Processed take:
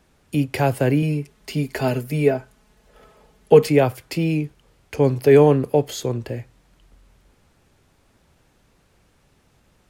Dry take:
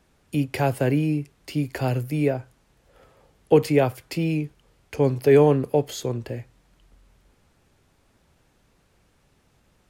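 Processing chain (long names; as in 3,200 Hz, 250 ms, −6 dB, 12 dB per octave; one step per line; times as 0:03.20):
0:01.02–0:03.69: comb filter 4.7 ms, depth 67%
level +3 dB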